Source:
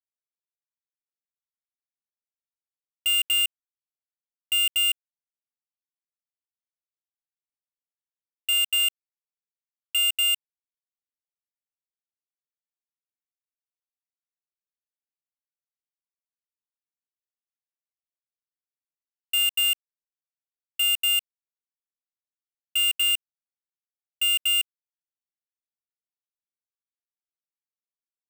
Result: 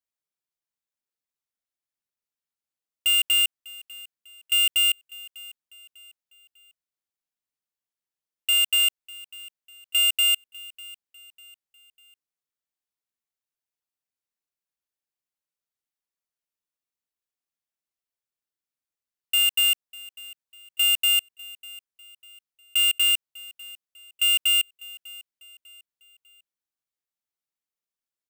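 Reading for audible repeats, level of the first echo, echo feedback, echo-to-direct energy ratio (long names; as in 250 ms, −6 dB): 2, −21.0 dB, 41%, −20.0 dB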